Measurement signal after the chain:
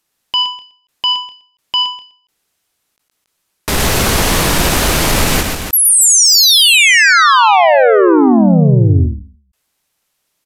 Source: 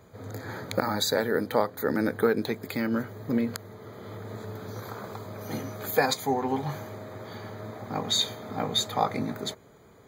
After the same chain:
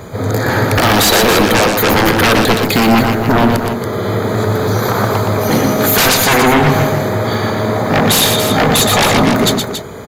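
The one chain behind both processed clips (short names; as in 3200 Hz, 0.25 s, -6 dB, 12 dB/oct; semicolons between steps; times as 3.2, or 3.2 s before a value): sine folder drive 20 dB, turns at -8 dBFS; downsampling 32000 Hz; on a send: loudspeakers at several distances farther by 41 m -5 dB, 96 m -8 dB; on the sum: ending taper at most 120 dB/s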